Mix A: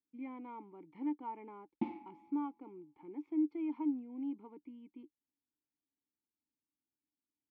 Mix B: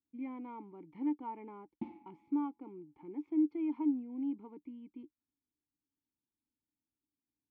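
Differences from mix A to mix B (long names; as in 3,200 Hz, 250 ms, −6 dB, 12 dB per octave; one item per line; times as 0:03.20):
background −8.5 dB
master: add low-shelf EQ 180 Hz +10.5 dB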